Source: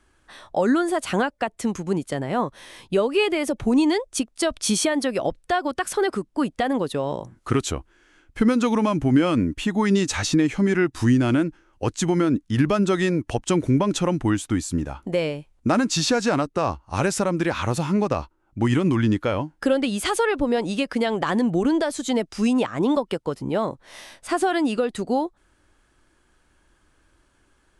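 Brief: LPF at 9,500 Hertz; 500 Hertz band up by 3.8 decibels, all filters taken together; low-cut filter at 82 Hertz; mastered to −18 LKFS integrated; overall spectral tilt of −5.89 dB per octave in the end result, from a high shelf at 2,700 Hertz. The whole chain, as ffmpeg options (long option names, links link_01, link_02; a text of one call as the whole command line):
ffmpeg -i in.wav -af "highpass=82,lowpass=9500,equalizer=frequency=500:width_type=o:gain=5,highshelf=frequency=2700:gain=-4.5,volume=3.5dB" out.wav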